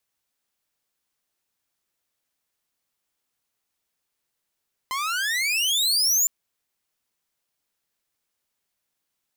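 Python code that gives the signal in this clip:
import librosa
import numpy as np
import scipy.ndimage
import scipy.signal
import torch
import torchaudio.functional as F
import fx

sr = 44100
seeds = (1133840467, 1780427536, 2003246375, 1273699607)

y = fx.riser_tone(sr, length_s=1.36, level_db=-13.0, wave='saw', hz=1020.0, rise_st=34.0, swell_db=9.5)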